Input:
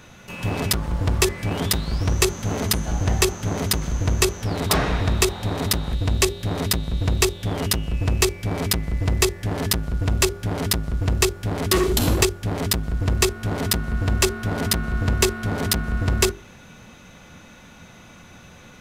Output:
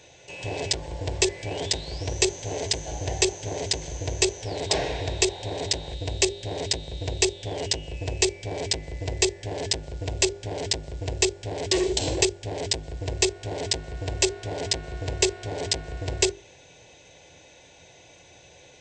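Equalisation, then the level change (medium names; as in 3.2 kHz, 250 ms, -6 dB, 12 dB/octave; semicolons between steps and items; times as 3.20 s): high-pass 180 Hz 6 dB/octave; brick-wall FIR low-pass 8.4 kHz; static phaser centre 520 Hz, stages 4; 0.0 dB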